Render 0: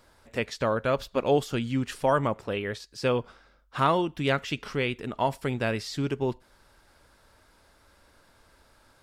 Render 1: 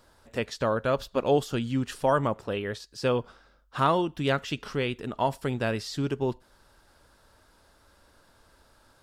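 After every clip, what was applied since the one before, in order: peaking EQ 2.2 kHz -5.5 dB 0.38 oct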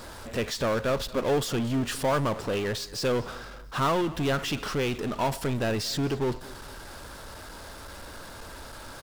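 partial rectifier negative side -3 dB; power-law waveshaper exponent 0.5; feedback delay 228 ms, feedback 42%, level -21 dB; trim -5 dB

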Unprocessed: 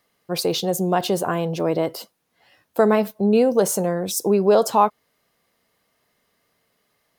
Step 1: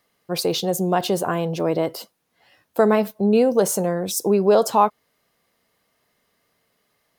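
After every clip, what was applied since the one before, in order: no audible change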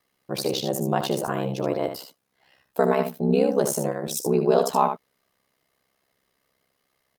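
ring modulator 33 Hz; delay 75 ms -7.5 dB; trim -1.5 dB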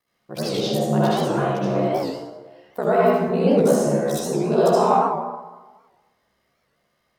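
reverberation RT60 1.3 s, pre-delay 58 ms, DRR -9.5 dB; warped record 78 rpm, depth 160 cents; trim -6 dB

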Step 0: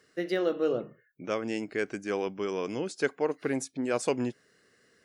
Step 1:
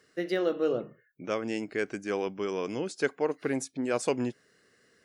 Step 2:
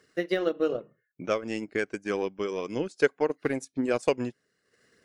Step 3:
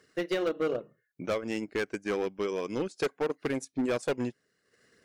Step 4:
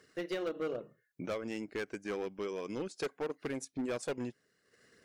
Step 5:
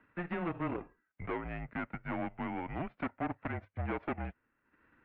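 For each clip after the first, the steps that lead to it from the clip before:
no audible change
transient shaper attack +5 dB, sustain -10 dB; phaser 1.8 Hz, delay 2.2 ms, feedback 24%
hard clipper -24 dBFS, distortion -8 dB
peak limiter -31 dBFS, peak gain reduction 7 dB
formants flattened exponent 0.6; mistuned SSB -170 Hz 200–2500 Hz; dynamic bell 710 Hz, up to +7 dB, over -57 dBFS, Q 2.5

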